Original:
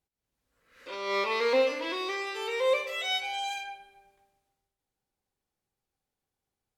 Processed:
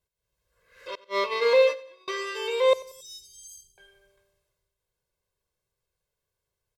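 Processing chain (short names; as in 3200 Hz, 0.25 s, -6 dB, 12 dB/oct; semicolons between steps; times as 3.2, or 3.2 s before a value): 0.95–2.08 gate -28 dBFS, range -37 dB; 2.73–3.78 inverse Chebyshev band-stop 700–2000 Hz, stop band 70 dB; comb 1.9 ms, depth 97%; feedback echo 91 ms, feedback 43%, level -20 dB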